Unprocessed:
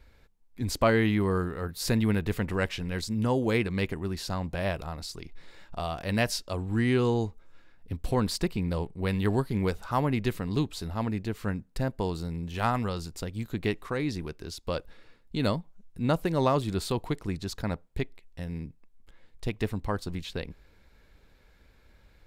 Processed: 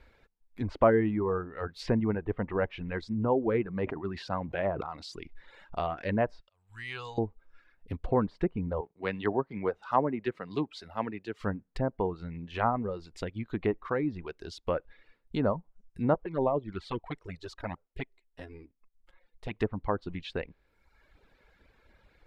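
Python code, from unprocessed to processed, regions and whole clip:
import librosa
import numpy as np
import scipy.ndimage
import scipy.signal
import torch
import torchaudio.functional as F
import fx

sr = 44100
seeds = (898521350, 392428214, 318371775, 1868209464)

y = fx.chain(x, sr, fx.highpass(hz=88.0, slope=12),
    fx.sustainer(db_per_s=45.0), at=(3.66, 5.16))
y = fx.chain(y, sr, fx.tone_stack(knobs='10-0-10'),
    fx.auto_swell(attack_ms=483.0), at=(6.4, 7.18))
y = fx.chain(y, sr, fx.highpass(hz=270.0, slope=6),
    fx.band_widen(depth_pct=40), at=(8.81, 11.4))
y = fx.chain(y, sr, fx.halfwave_gain(db=-3.0),
    fx.bass_treble(bass_db=-3, treble_db=-2),
    fx.env_flanger(rest_ms=6.3, full_db=-23.0), at=(16.14, 19.51))
y = fx.env_lowpass_down(y, sr, base_hz=1100.0, full_db=-25.0)
y = fx.dereverb_blind(y, sr, rt60_s=1.1)
y = fx.bass_treble(y, sr, bass_db=-6, treble_db=-10)
y = y * 10.0 ** (3.0 / 20.0)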